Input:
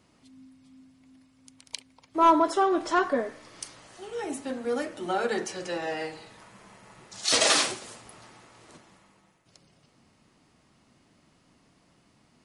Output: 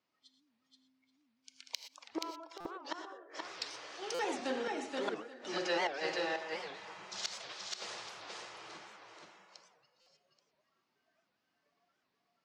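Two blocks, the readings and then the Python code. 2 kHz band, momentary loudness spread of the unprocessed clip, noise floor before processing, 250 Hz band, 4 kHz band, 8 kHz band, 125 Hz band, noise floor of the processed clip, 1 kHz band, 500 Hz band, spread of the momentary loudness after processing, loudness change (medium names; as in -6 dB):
-7.5 dB, 21 LU, -65 dBFS, -12.5 dB, -11.0 dB, -16.0 dB, -11.5 dB, -82 dBFS, -14.5 dB, -10.0 dB, 16 LU, -13.5 dB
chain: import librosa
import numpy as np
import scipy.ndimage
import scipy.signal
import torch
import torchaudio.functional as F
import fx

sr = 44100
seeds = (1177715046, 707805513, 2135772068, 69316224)

y = scipy.signal.sosfilt(scipy.signal.butter(4, 5800.0, 'lowpass', fs=sr, output='sos'), x)
y = fx.gate_flip(y, sr, shuts_db=-22.0, range_db=-28)
y = fx.noise_reduce_blind(y, sr, reduce_db=20)
y = 10.0 ** (-21.0 / 20.0) * np.tanh(y / 10.0 ** (-21.0 / 20.0))
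y = fx.highpass(y, sr, hz=690.0, slope=6)
y = fx.echo_multitap(y, sr, ms=(81, 478, 830), db=(-19.5, -3.0, -18.0))
y = fx.rev_gated(y, sr, seeds[0], gate_ms=140, shape='rising', drr_db=9.0)
y = fx.buffer_glitch(y, sr, at_s=(2.6, 4.14, 10.01), block=256, repeats=8)
y = fx.record_warp(y, sr, rpm=78.0, depth_cents=250.0)
y = y * librosa.db_to_amplitude(3.0)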